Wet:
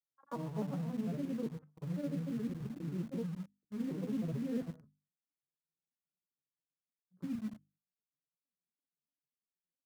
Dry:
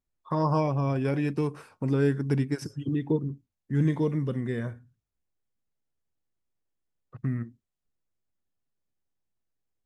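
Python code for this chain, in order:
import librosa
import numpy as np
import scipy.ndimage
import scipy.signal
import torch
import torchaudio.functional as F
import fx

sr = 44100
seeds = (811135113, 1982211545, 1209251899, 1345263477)

p1 = fx.vocoder_arp(x, sr, chord='bare fifth', root=52, every_ms=177)
p2 = fx.level_steps(p1, sr, step_db=20)
p3 = p2 + fx.echo_single(p2, sr, ms=89, db=-12.0, dry=0)
p4 = fx.granulator(p3, sr, seeds[0], grain_ms=100.0, per_s=20.0, spray_ms=100.0, spread_st=3)
p5 = scipy.signal.sosfilt(scipy.signal.butter(2, 1600.0, 'lowpass', fs=sr, output='sos'), p4)
p6 = fx.hum_notches(p5, sr, base_hz=50, count=6)
p7 = fx.quant_dither(p6, sr, seeds[1], bits=8, dither='none')
p8 = p6 + (p7 * librosa.db_to_amplitude(-9.0))
p9 = fx.upward_expand(p8, sr, threshold_db=-49.0, expansion=1.5)
y = p9 * librosa.db_to_amplitude(3.5)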